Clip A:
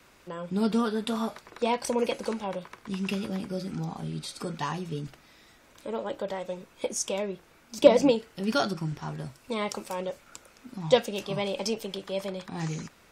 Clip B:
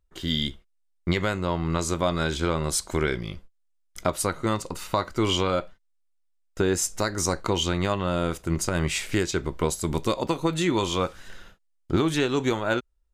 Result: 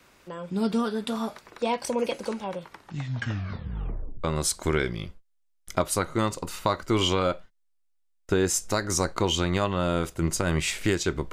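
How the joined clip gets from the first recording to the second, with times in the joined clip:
clip A
0:02.55: tape stop 1.69 s
0:04.24: continue with clip B from 0:02.52

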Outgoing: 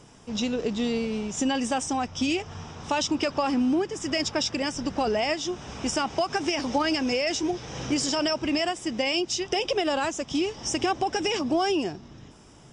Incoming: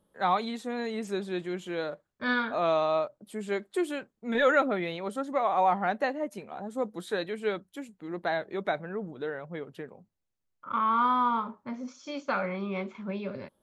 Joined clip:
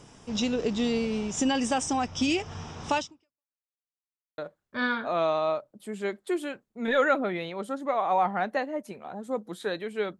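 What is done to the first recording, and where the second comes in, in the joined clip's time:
outgoing
0:02.97–0:03.53: fade out exponential
0:03.53–0:04.38: silence
0:04.38: continue with incoming from 0:01.85

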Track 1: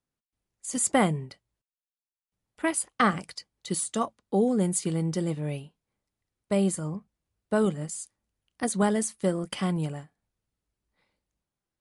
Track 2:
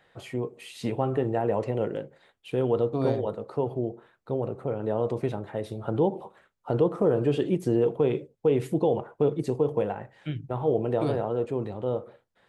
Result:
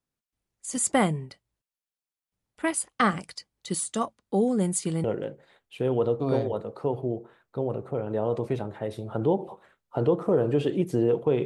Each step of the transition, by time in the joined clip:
track 1
0:05.04: continue with track 2 from 0:01.77

